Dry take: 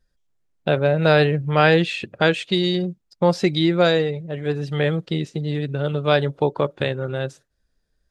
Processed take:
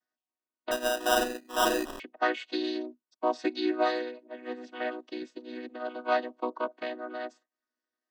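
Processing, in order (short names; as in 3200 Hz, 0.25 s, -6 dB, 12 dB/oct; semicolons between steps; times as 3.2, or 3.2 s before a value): chord vocoder major triad, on B3; resonant low shelf 580 Hz -9 dB, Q 1.5; 0.71–2 sample-rate reducer 2200 Hz, jitter 0%; gain -3.5 dB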